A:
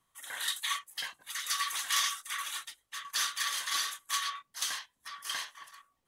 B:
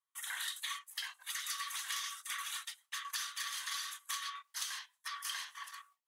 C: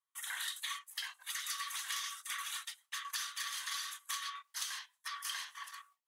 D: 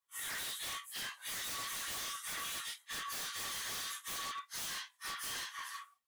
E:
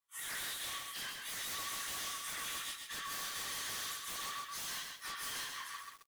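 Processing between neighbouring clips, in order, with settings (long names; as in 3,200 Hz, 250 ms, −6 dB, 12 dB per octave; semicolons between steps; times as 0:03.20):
noise gate with hold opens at −58 dBFS; high-pass filter 920 Hz 24 dB per octave; downward compressor 6 to 1, threshold −42 dBFS, peak gain reduction 16 dB; level +4 dB
no processing that can be heard
random phases in long frames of 100 ms; wave folding −39.5 dBFS; level +3.5 dB
pitch vibrato 11 Hz 36 cents; single-tap delay 125 ms −16 dB; feedback echo at a low word length 132 ms, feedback 35%, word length 9 bits, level −3 dB; level −1.5 dB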